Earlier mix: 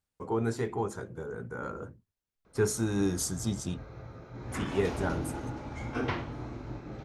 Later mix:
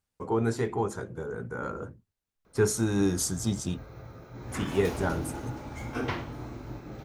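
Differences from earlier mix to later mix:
speech +3.0 dB
background: remove high-frequency loss of the air 66 metres

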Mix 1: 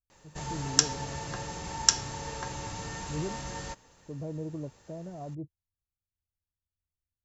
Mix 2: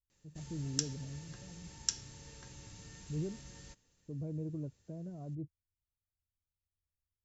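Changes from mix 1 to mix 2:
background −11.0 dB
master: add parametric band 870 Hz −14 dB 1.8 octaves

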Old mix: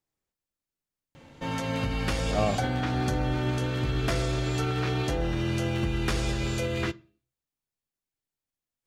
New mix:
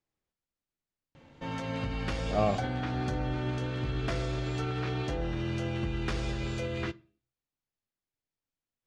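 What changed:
background −4.5 dB
master: add high-frequency loss of the air 76 metres

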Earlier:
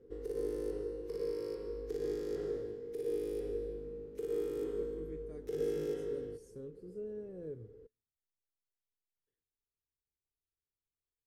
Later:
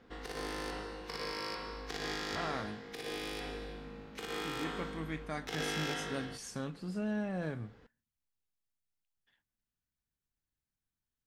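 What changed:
speech +8.0 dB
master: remove drawn EQ curve 120 Hz 0 dB, 220 Hz −9 dB, 440 Hz +12 dB, 690 Hz −18 dB, 3,800 Hz −21 dB, 11,000 Hz −5 dB

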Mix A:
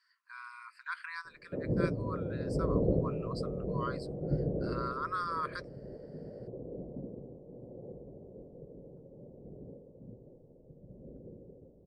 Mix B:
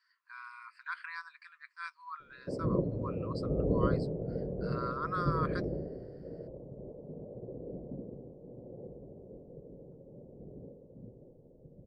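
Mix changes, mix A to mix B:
background: entry +0.95 s
master: add high-frequency loss of the air 61 metres

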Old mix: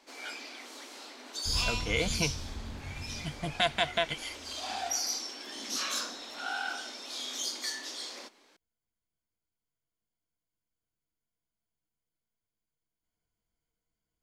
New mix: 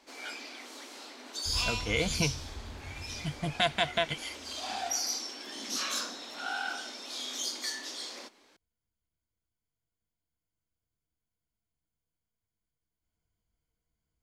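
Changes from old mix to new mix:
second sound −9.5 dB
master: add parametric band 66 Hz +8.5 dB 2.1 octaves

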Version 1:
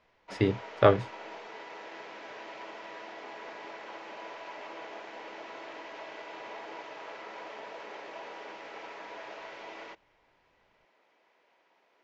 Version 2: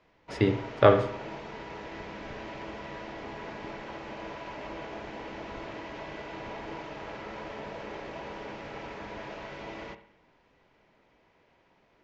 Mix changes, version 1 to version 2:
background: remove high-pass filter 460 Hz 12 dB per octave
reverb: on

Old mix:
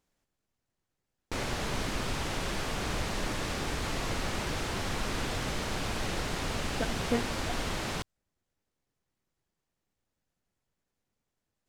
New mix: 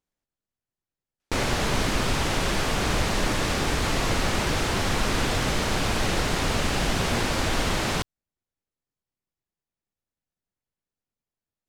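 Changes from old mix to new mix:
speech −9.0 dB
background +8.5 dB

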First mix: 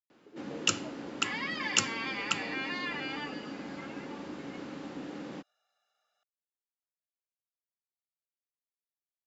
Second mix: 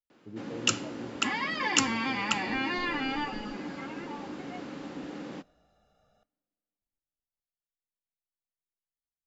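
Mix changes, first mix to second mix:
speech: remove high-pass filter 390 Hz 24 dB per octave
second sound: remove high-pass filter 1,300 Hz 12 dB per octave
reverb: on

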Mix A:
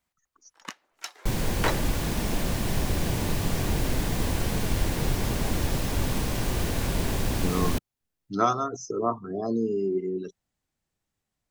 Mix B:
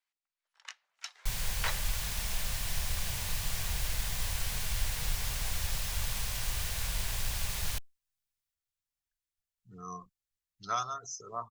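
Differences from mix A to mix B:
speech: entry +2.30 s
first sound: add high-frequency loss of the air 70 metres
master: add guitar amp tone stack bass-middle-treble 10-0-10

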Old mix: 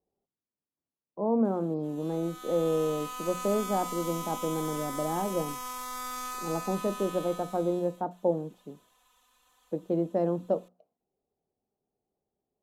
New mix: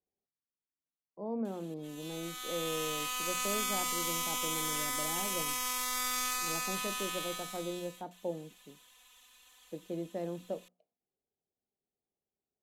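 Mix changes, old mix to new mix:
speech −10.0 dB
master: add high shelf with overshoot 1,600 Hz +7.5 dB, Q 1.5

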